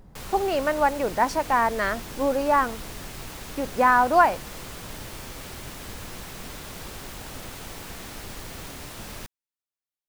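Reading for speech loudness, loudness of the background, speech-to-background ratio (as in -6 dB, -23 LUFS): -23.0 LUFS, -38.0 LUFS, 15.0 dB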